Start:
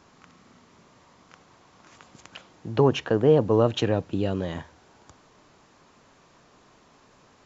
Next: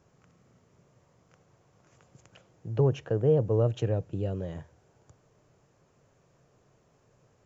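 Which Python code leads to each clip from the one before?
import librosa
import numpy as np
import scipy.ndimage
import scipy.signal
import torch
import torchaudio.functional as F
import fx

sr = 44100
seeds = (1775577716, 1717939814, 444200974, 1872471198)

y = fx.graphic_eq_10(x, sr, hz=(125, 250, 500, 1000, 2000, 4000), db=(9, -8, 4, -8, -4, -11))
y = y * 10.0 ** (-6.0 / 20.0)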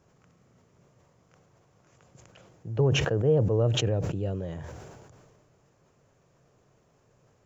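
y = fx.sustainer(x, sr, db_per_s=30.0)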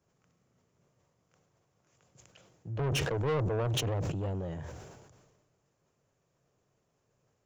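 y = 10.0 ** (-29.5 / 20.0) * np.tanh(x / 10.0 ** (-29.5 / 20.0))
y = fx.band_widen(y, sr, depth_pct=40)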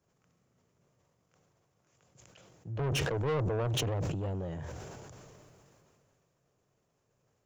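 y = fx.sustainer(x, sr, db_per_s=21.0)
y = y * 10.0 ** (-1.0 / 20.0)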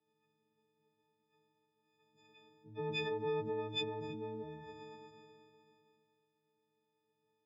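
y = fx.freq_snap(x, sr, grid_st=6)
y = fx.cabinet(y, sr, low_hz=210.0, low_slope=12, high_hz=3200.0, hz=(390.0, 1100.0, 1800.0), db=(5, -4, -8))
y = fx.notch_comb(y, sr, f0_hz=610.0)
y = y * 10.0 ** (-5.5 / 20.0)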